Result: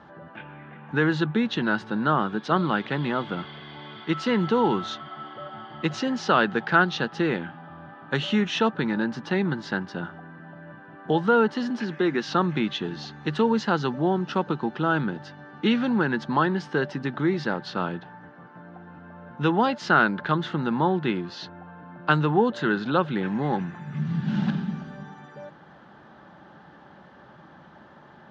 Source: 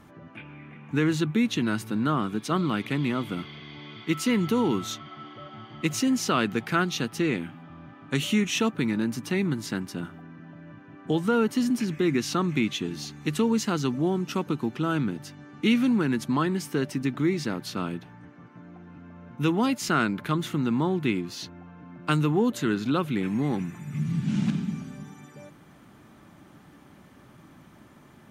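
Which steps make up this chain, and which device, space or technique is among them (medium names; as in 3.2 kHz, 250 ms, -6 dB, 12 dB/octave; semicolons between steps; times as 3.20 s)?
11.53–12.28 s: high-pass 200 Hz; guitar cabinet (cabinet simulation 82–4400 Hz, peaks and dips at 110 Hz -10 dB, 270 Hz -7 dB, 550 Hz +5 dB, 840 Hz +8 dB, 1.6 kHz +8 dB, 2.3 kHz -9 dB); trim +2.5 dB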